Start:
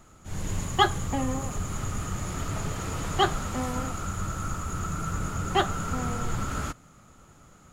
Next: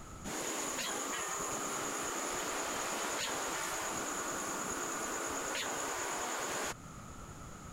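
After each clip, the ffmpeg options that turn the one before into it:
-af "afftfilt=real='re*lt(hypot(re,im),0.0631)':imag='im*lt(hypot(re,im),0.0631)':win_size=1024:overlap=0.75,acompressor=threshold=-43dB:ratio=2,volume=5.5dB"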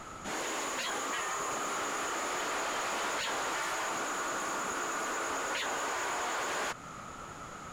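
-filter_complex "[0:a]asplit=2[a][b];[b]highpass=f=720:p=1,volume=15dB,asoftclip=type=tanh:threshold=-23.5dB[c];[a][c]amix=inputs=2:normalize=0,lowpass=f=2.8k:p=1,volume=-6dB"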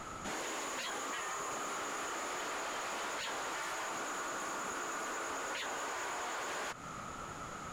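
-af "acompressor=threshold=-37dB:ratio=6"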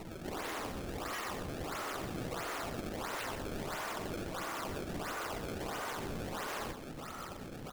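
-filter_complex "[0:a]acrossover=split=520[a][b];[b]acrusher=samples=26:mix=1:aa=0.000001:lfo=1:lforange=41.6:lforate=1.5[c];[a][c]amix=inputs=2:normalize=0,aecho=1:1:122:0.376"

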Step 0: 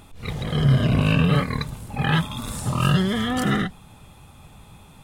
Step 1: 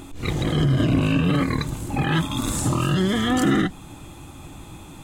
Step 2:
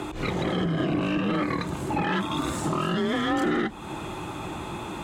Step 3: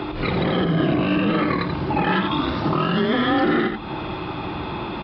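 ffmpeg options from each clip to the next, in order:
-filter_complex "[0:a]asplit=2[a][b];[b]acompressor=threshold=-28dB:ratio=6,volume=-1dB[c];[a][c]amix=inputs=2:normalize=0,alimiter=limit=-13.5dB:level=0:latency=1:release=32,superequalizer=6b=3.55:15b=1.78"
-filter_complex "[0:a]acompressor=threshold=-33dB:ratio=2.5,asplit=2[a][b];[b]highpass=f=720:p=1,volume=15dB,asoftclip=type=tanh:threshold=-20.5dB[c];[a][c]amix=inputs=2:normalize=0,lowpass=f=1.3k:p=1,volume=-6dB,afreqshift=29,volume=5.5dB"
-filter_complex "[0:a]aresample=11025,aresample=44100,asplit=2[a][b];[b]aecho=0:1:86:0.473[c];[a][c]amix=inputs=2:normalize=0,volume=5dB"

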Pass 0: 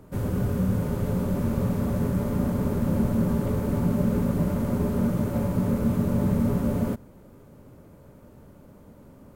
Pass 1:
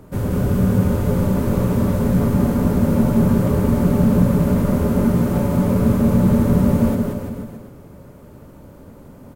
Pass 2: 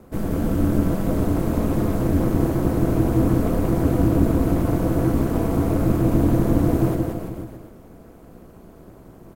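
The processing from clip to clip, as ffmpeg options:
-af "aecho=1:1:180|342|487.8|619|737.1:0.631|0.398|0.251|0.158|0.1,volume=6dB"
-af "aeval=exprs='val(0)*sin(2*PI*100*n/s)':c=same"

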